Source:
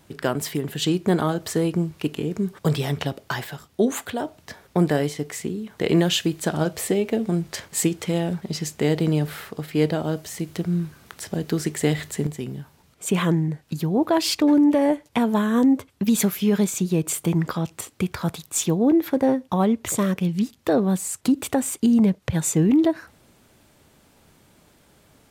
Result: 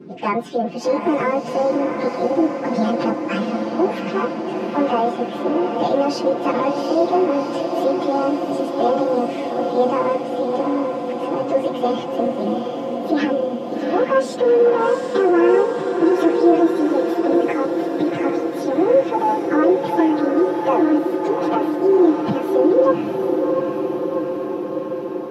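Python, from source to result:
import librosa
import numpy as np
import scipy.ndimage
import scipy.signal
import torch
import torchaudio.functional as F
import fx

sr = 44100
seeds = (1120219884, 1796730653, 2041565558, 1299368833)

p1 = fx.pitch_bins(x, sr, semitones=8.5)
p2 = fx.over_compress(p1, sr, threshold_db=-27.0, ratio=-1.0)
p3 = p1 + F.gain(torch.from_numpy(p2), 0.0).numpy()
p4 = scipy.signal.sosfilt(scipy.signal.butter(2, 80.0, 'highpass', fs=sr, output='sos'), p3)
p5 = fx.spacing_loss(p4, sr, db_at_10k=28)
p6 = p5 + 0.96 * np.pad(p5, (int(5.8 * sr / 1000.0), 0))[:len(p5)]
p7 = p6 + fx.echo_diffused(p6, sr, ms=744, feedback_pct=71, wet_db=-5.0, dry=0)
y = fx.dmg_noise_band(p7, sr, seeds[0], low_hz=150.0, high_hz=420.0, level_db=-41.0)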